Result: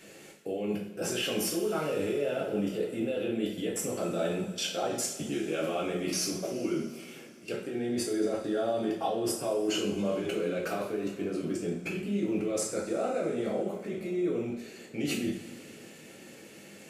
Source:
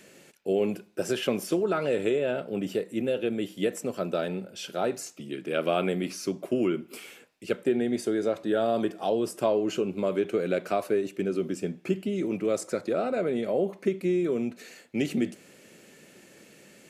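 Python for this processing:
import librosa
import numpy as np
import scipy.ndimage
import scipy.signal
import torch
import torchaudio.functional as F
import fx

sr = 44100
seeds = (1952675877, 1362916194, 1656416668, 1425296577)

y = fx.level_steps(x, sr, step_db=20)
y = fx.rev_double_slope(y, sr, seeds[0], early_s=0.48, late_s=3.6, knee_db=-19, drr_db=-4.5)
y = F.gain(torch.from_numpy(y), 4.0).numpy()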